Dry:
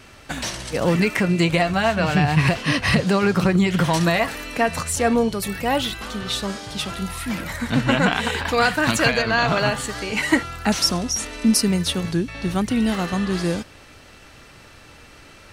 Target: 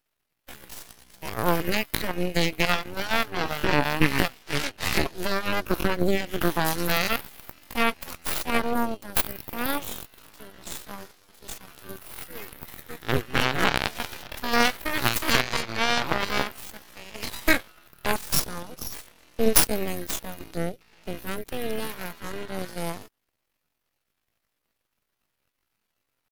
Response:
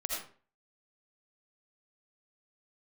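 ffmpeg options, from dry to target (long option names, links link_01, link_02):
-af "atempo=0.59,aexciter=amount=9.4:drive=4.9:freq=11000,aeval=exprs='1.06*(cos(1*acos(clip(val(0)/1.06,-1,1)))-cos(1*PI/2))+0.422*(cos(6*acos(clip(val(0)/1.06,-1,1)))-cos(6*PI/2))+0.15*(cos(7*acos(clip(val(0)/1.06,-1,1)))-cos(7*PI/2))+0.0668*(cos(8*acos(clip(val(0)/1.06,-1,1)))-cos(8*PI/2))':channel_layout=same,volume=-6dB"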